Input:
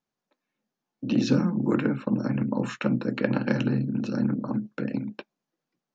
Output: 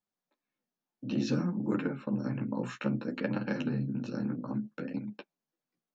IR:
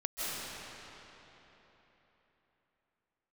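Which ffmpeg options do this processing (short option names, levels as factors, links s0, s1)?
-af "flanger=delay=9.3:depth=9.1:regen=-1:speed=0.59:shape=triangular,volume=0.631"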